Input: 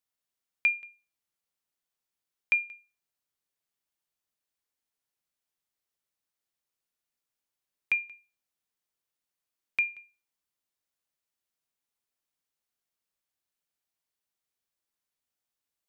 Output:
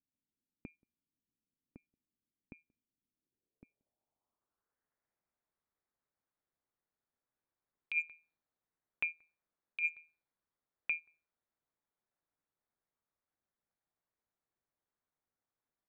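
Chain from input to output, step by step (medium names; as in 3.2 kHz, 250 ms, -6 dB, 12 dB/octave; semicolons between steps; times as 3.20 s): local Wiener filter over 15 samples; AM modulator 160 Hz, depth 50%; low-pass sweep 260 Hz -> 3.7 kHz, 3.06–5.52 s; echo from a far wall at 190 m, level -7 dB; level-controlled noise filter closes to 2.7 kHz, open at -40 dBFS; compressor with a negative ratio -33 dBFS, ratio -1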